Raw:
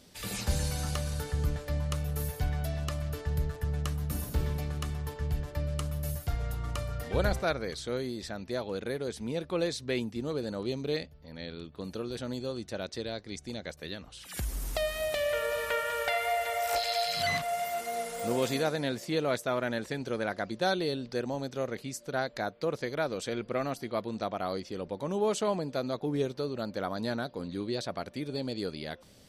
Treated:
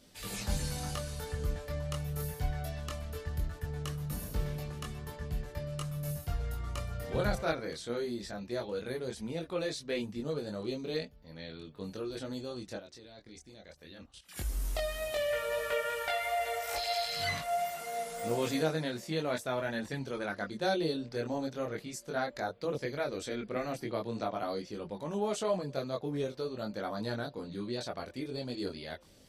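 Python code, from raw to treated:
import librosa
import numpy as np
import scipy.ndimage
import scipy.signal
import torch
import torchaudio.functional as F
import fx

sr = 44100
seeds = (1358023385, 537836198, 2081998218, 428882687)

y = fx.level_steps(x, sr, step_db=16, at=(12.77, 14.36))
y = fx.chorus_voices(y, sr, voices=4, hz=0.17, base_ms=22, depth_ms=3.5, mix_pct=45)
y = fx.band_squash(y, sr, depth_pct=70, at=(23.56, 24.47))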